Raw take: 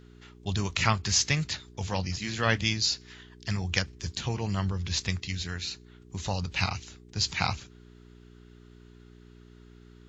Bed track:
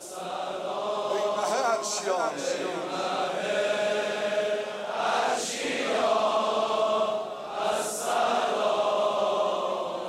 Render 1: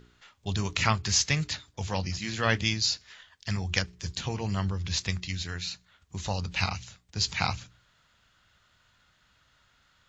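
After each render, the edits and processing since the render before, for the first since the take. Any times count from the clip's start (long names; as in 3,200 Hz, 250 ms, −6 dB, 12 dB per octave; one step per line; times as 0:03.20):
hum removal 60 Hz, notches 7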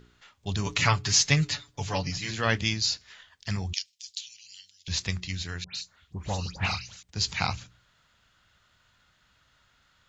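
0:00.66–0:02.31: comb filter 7 ms, depth 86%
0:03.73–0:04.88: inverse Chebyshev high-pass filter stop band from 1,200 Hz, stop band 50 dB
0:05.64–0:07.03: all-pass dispersion highs, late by 119 ms, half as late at 2,100 Hz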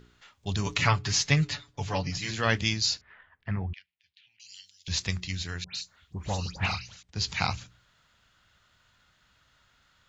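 0:00.77–0:02.15: high-shelf EQ 5,400 Hz −9.5 dB
0:03.01–0:04.40: low-pass filter 2,000 Hz 24 dB per octave
0:06.66–0:07.32: high-frequency loss of the air 63 metres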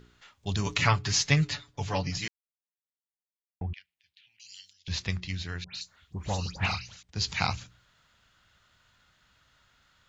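0:02.28–0:03.61: silence
0:04.73–0:05.81: high-frequency loss of the air 110 metres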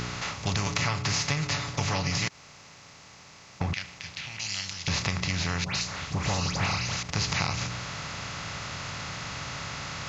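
compressor on every frequency bin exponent 0.4
downward compressor 6 to 1, threshold −24 dBFS, peak gain reduction 9.5 dB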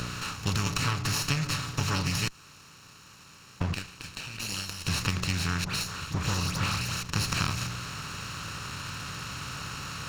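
lower of the sound and its delayed copy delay 0.72 ms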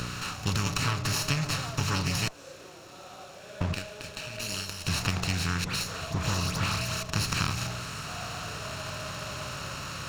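mix in bed track −18.5 dB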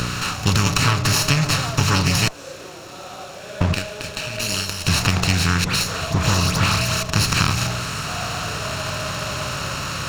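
level +10.5 dB
brickwall limiter −1 dBFS, peak gain reduction 2 dB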